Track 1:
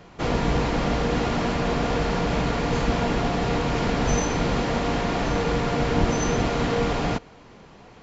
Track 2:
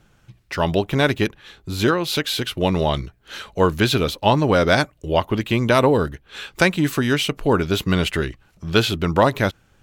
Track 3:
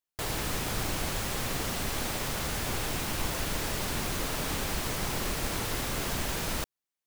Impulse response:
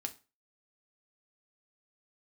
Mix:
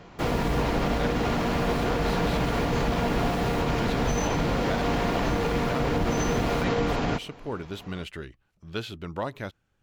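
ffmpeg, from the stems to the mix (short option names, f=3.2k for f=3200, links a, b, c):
-filter_complex "[0:a]volume=0dB[a];[1:a]volume=-15.5dB,asplit=2[b][c];[2:a]volume=-12dB[d];[c]apad=whole_len=311572[e];[d][e]sidechaincompress=threshold=-31dB:ratio=8:attack=24:release=1460[f];[a][b]amix=inputs=2:normalize=0,highshelf=f=6.8k:g=-5.5,alimiter=limit=-16.5dB:level=0:latency=1:release=50,volume=0dB[g];[f][g]amix=inputs=2:normalize=0"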